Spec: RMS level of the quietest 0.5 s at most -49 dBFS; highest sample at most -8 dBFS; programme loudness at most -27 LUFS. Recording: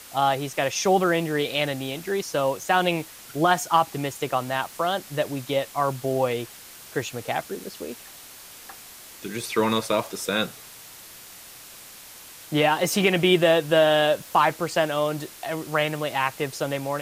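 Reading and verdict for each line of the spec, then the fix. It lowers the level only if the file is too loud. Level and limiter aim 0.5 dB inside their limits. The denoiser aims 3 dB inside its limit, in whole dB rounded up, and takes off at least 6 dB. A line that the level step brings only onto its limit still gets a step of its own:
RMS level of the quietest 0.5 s -44 dBFS: fail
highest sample -7.0 dBFS: fail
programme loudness -24.0 LUFS: fail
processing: noise reduction 6 dB, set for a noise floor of -44 dBFS; trim -3.5 dB

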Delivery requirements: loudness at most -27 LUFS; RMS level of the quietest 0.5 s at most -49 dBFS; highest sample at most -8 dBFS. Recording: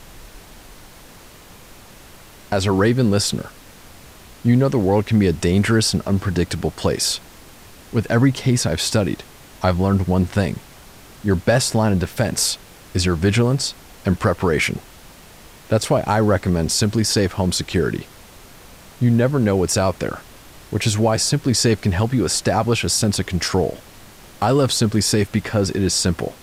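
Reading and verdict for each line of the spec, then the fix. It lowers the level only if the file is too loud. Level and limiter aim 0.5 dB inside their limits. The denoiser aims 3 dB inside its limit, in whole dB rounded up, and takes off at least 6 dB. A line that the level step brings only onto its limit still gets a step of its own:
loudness -19.0 LUFS: fail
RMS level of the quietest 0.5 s -43 dBFS: fail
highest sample -5.5 dBFS: fail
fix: trim -8.5 dB

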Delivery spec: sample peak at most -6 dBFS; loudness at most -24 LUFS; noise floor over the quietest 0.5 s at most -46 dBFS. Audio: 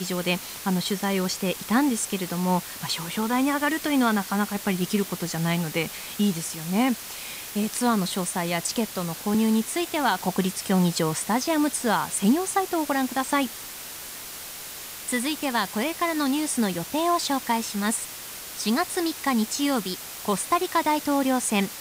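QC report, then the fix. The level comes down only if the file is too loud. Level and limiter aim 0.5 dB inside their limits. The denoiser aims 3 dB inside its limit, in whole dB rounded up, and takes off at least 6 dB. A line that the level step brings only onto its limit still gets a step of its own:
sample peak -10.5 dBFS: pass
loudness -25.5 LUFS: pass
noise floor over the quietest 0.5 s -38 dBFS: fail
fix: noise reduction 11 dB, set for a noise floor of -38 dBFS

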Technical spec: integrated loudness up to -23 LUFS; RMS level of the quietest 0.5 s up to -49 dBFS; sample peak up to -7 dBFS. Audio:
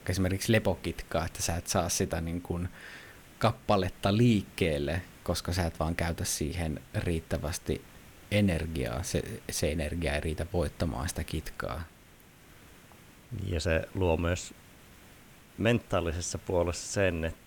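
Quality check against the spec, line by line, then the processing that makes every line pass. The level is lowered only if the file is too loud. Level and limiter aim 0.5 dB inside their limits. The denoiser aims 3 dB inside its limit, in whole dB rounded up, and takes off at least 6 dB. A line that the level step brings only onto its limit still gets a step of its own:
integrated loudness -31.0 LUFS: pass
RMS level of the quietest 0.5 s -56 dBFS: pass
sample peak -12.5 dBFS: pass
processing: none needed

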